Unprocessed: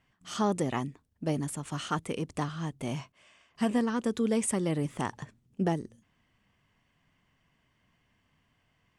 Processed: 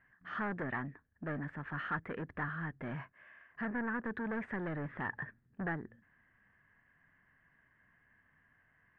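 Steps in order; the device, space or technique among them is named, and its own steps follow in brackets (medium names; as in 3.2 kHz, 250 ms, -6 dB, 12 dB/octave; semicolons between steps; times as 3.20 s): 3.65–4.05 s: low-pass 1.8 kHz 24 dB/octave; overdriven synthesiser ladder filter (saturation -31.5 dBFS, distortion -8 dB; four-pole ladder low-pass 1.8 kHz, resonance 80%); trim +8.5 dB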